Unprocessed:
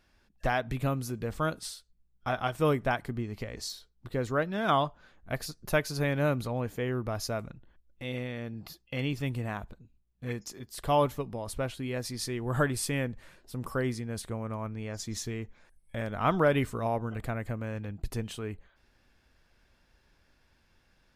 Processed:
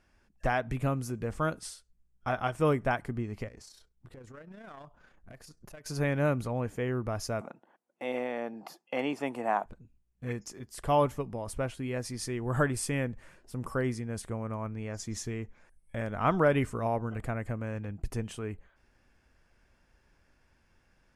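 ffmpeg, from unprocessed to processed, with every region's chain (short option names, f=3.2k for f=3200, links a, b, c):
-filter_complex "[0:a]asettb=1/sr,asplit=3[a][b][c];[a]atrim=end=3.484[d];[b]atrim=start=3.48:end=5.86,asetpts=PTS-STARTPTS,afade=t=in:d=0.004:c=qsin,afade=t=out:st=2.376:d=0.004:c=qsin,acompressor=threshold=-44dB:ratio=4:attack=3.2:release=140:knee=1:detection=peak,aeval=exprs='clip(val(0),-1,0.00708)':c=same,tremolo=f=30:d=0.462[e];[c]atrim=start=5.856[f];[d][e]acrossfade=d=0.004:c1=hsin:c2=qsin[g];[g][f]acrossfade=d=0.004:c1=qsin:c2=hsin,asettb=1/sr,asplit=3[h][i][j];[h]atrim=end=7.414[k];[i]atrim=start=7.41:end=9.66,asetpts=PTS-STARTPTS,afade=t=in:d=0.004:c=qsin,afade=t=out:st=2.246:d=0.004:c=qsin,highpass=f=220:w=0.5412,highpass=f=220:w=1.3066,equalizer=f=790:t=o:w=1.1:g=14[l];[j]atrim=start=9.656[m];[k][l]acrossfade=d=0.004:c1=hsin:c2=qsin[n];[n][m]acrossfade=d=0.004:c1=qsin:c2=hsin,lowpass=f=11k:w=0.5412,lowpass=f=11k:w=1.3066,equalizer=f=3.9k:t=o:w=0.62:g=-9"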